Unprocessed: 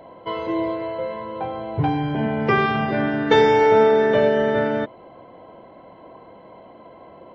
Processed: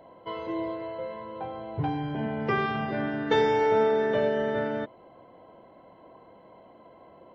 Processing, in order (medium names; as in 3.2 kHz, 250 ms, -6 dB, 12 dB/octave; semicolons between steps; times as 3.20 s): band-stop 2.3 kHz, Q 20; trim -8 dB